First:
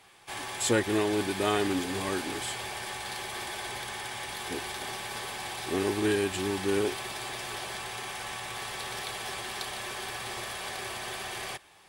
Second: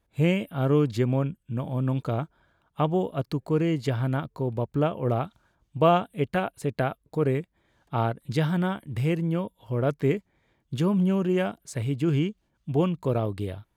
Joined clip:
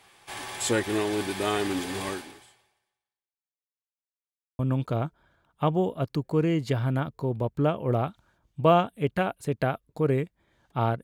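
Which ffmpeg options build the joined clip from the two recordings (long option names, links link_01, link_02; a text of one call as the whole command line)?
ffmpeg -i cue0.wav -i cue1.wav -filter_complex "[0:a]apad=whole_dur=11.03,atrim=end=11.03,asplit=2[link_01][link_02];[link_01]atrim=end=3.84,asetpts=PTS-STARTPTS,afade=type=out:start_time=2.09:duration=1.75:curve=exp[link_03];[link_02]atrim=start=3.84:end=4.59,asetpts=PTS-STARTPTS,volume=0[link_04];[1:a]atrim=start=1.76:end=8.2,asetpts=PTS-STARTPTS,afade=type=in:duration=0.004:curve=hsin[link_05];[link_03][link_04][link_05]concat=n=3:v=0:a=1" out.wav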